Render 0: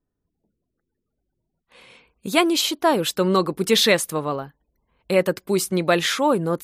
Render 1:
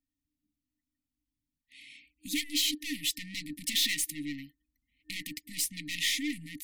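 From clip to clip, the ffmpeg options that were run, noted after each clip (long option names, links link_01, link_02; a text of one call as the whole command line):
ffmpeg -i in.wav -af "aeval=exprs='(tanh(15.8*val(0)+0.45)-tanh(0.45))/15.8':channel_layout=same,lowshelf=frequency=260:width_type=q:width=3:gain=-10,afftfilt=real='re*(1-between(b*sr/4096,310,1800))':imag='im*(1-between(b*sr/4096,310,1800))':win_size=4096:overlap=0.75" out.wav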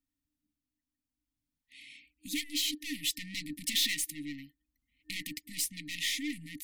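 ffmpeg -i in.wav -af "tremolo=f=0.58:d=0.32" out.wav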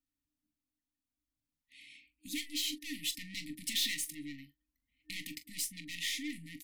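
ffmpeg -i in.wav -af "aecho=1:1:23|42:0.211|0.2,volume=-4dB" out.wav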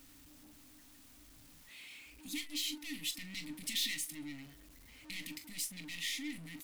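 ffmpeg -i in.wav -af "aeval=exprs='val(0)+0.5*0.00398*sgn(val(0))':channel_layout=same,volume=-3dB" out.wav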